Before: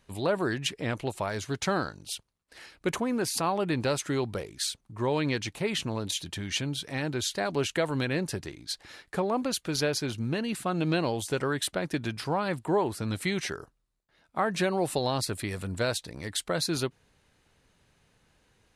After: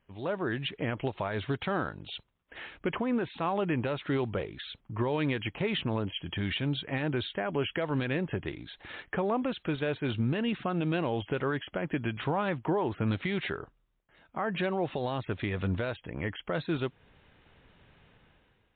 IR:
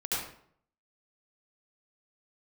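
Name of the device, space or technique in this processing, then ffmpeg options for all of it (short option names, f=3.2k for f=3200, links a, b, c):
low-bitrate web radio: -af "dynaudnorm=f=150:g=9:m=14dB,alimiter=limit=-14dB:level=0:latency=1:release=243,volume=-6.5dB" -ar 8000 -c:a libmp3lame -b:a 40k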